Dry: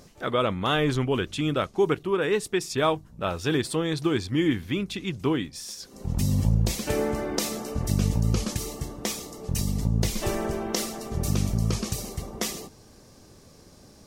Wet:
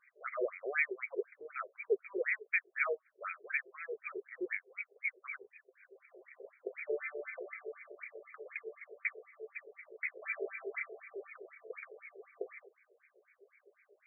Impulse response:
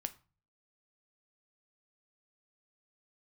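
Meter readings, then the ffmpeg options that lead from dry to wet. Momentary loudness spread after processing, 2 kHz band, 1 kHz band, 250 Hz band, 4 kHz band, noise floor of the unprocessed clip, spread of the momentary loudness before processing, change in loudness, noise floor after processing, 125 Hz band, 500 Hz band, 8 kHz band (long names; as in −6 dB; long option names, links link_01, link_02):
17 LU, −2.0 dB, −16.0 dB, −24.5 dB, below −40 dB, −52 dBFS, 8 LU, −12.5 dB, −77 dBFS, below −40 dB, −12.5 dB, below −40 dB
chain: -filter_complex "[0:a]asplit=3[link_01][link_02][link_03];[link_01]bandpass=frequency=270:width_type=q:width=8,volume=0dB[link_04];[link_02]bandpass=frequency=2290:width_type=q:width=8,volume=-6dB[link_05];[link_03]bandpass=frequency=3010:width_type=q:width=8,volume=-9dB[link_06];[link_04][link_05][link_06]amix=inputs=3:normalize=0,asplit=2[link_07][link_08];[1:a]atrim=start_sample=2205,asetrate=66150,aresample=44100,lowpass=7300[link_09];[link_08][link_09]afir=irnorm=-1:irlink=0,volume=0.5dB[link_10];[link_07][link_10]amix=inputs=2:normalize=0,afftfilt=real='re*between(b*sr/1024,510*pow(1800/510,0.5+0.5*sin(2*PI*4*pts/sr))/1.41,510*pow(1800/510,0.5+0.5*sin(2*PI*4*pts/sr))*1.41)':imag='im*between(b*sr/1024,510*pow(1800/510,0.5+0.5*sin(2*PI*4*pts/sr))/1.41,510*pow(1800/510,0.5+0.5*sin(2*PI*4*pts/sr))*1.41)':win_size=1024:overlap=0.75,volume=13.5dB"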